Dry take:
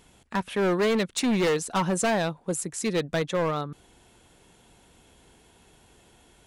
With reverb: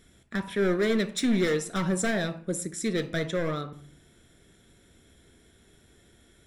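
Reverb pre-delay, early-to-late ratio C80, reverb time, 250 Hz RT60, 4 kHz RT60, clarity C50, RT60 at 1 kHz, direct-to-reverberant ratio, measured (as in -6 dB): 3 ms, 18.5 dB, 0.50 s, 0.75 s, 0.35 s, 14.5 dB, 0.45 s, 9.0 dB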